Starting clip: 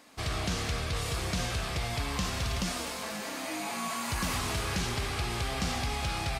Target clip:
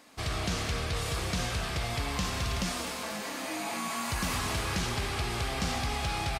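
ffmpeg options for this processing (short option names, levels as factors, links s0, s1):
-filter_complex "[0:a]asplit=2[s0][s1];[s1]adelay=230,highpass=300,lowpass=3400,asoftclip=type=hard:threshold=0.0335,volume=0.447[s2];[s0][s2]amix=inputs=2:normalize=0"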